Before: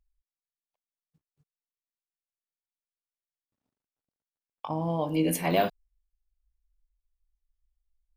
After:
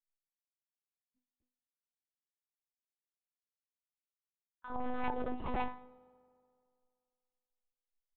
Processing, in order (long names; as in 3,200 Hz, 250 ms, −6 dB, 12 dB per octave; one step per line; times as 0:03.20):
downward expander −59 dBFS
comb filter 6.6 ms, depth 82%
treble cut that deepens with the level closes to 1,100 Hz, closed at −26.5 dBFS
formants moved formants +6 semitones
resonators tuned to a chord A3 minor, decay 0.4 s
wave folding −40 dBFS
hollow resonant body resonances 200/830 Hz, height 11 dB, ringing for 45 ms
one-pitch LPC vocoder at 8 kHz 250 Hz
convolution reverb RT60 2.3 s, pre-delay 3 ms, DRR 19.5 dB
level +8 dB